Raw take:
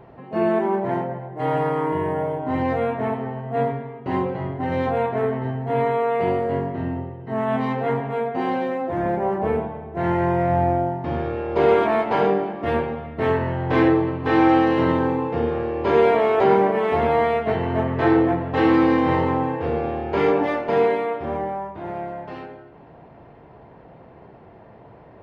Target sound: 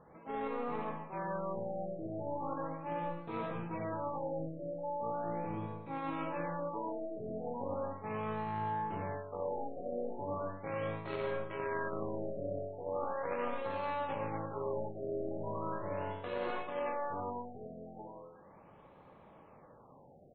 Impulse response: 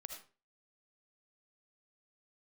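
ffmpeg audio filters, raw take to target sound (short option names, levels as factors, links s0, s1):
-filter_complex "[0:a]aeval=exprs='0.562*(cos(1*acos(clip(val(0)/0.562,-1,1)))-cos(1*PI/2))+0.126*(cos(3*acos(clip(val(0)/0.562,-1,1)))-cos(3*PI/2))+0.0112*(cos(4*acos(clip(val(0)/0.562,-1,1)))-cos(4*PI/2))':c=same[s0];[1:a]atrim=start_sample=2205,asetrate=30429,aresample=44100[s1];[s0][s1]afir=irnorm=-1:irlink=0,asetrate=54684,aresample=44100,areverse,acompressor=threshold=0.02:ratio=6,areverse,afftfilt=real='re*lt(b*sr/1024,750*pow(4400/750,0.5+0.5*sin(2*PI*0.38*pts/sr)))':imag='im*lt(b*sr/1024,750*pow(4400/750,0.5+0.5*sin(2*PI*0.38*pts/sr)))':win_size=1024:overlap=0.75"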